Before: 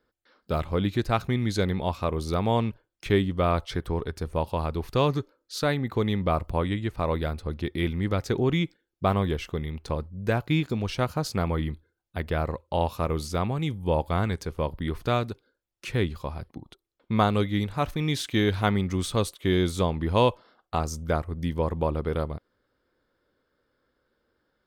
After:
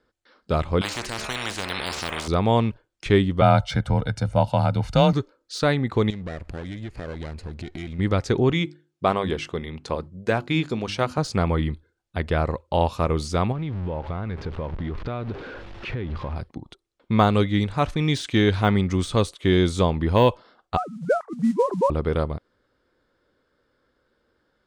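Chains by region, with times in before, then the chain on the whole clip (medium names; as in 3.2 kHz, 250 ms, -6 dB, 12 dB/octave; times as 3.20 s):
0.81–2.28 s: de-hum 73.63 Hz, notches 35 + spectrum-flattening compressor 10:1
3.41–5.13 s: comb 1.4 ms, depth 78% + frequency shift +26 Hz
6.10–7.99 s: comb filter that takes the minimum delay 0.42 ms + compression 4:1, threshold -36 dBFS
8.52–11.18 s: high-pass 200 Hz 6 dB/octave + hum notches 50/100/150/200/250/300/350 Hz
13.52–16.36 s: jump at every zero crossing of -33.5 dBFS + distance through air 330 m + compression 12:1, threshold -29 dBFS
20.77–21.90 s: formants replaced by sine waves + low-pass 1.6 kHz 24 dB/octave + modulation noise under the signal 28 dB
whole clip: low-pass 9.1 kHz 24 dB/octave; de-esser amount 80%; trim +4.5 dB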